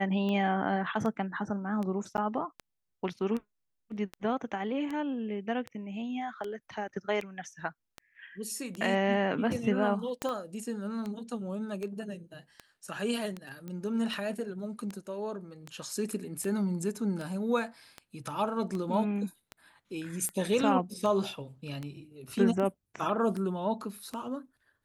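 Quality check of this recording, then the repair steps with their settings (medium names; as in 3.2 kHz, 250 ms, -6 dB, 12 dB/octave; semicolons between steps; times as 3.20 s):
tick 78 rpm -24 dBFS
2.17–2.18 s: dropout 9.2 ms
10.22 s: pop -17 dBFS
13.68 s: pop -28 dBFS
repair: de-click; interpolate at 2.17 s, 9.2 ms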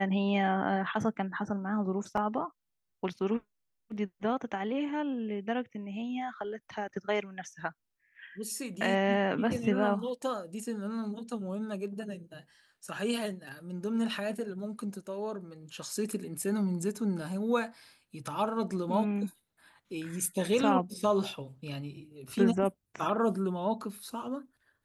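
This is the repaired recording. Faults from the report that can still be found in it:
10.22 s: pop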